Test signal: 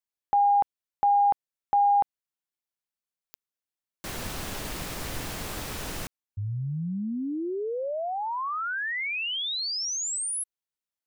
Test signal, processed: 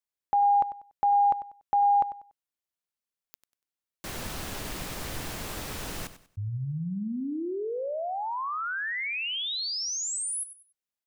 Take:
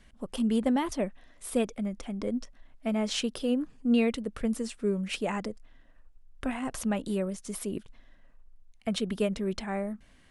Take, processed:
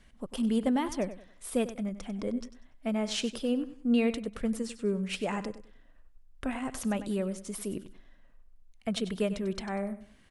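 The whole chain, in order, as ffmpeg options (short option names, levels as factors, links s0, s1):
-af "aecho=1:1:96|192|288:0.211|0.0592|0.0166,volume=0.841"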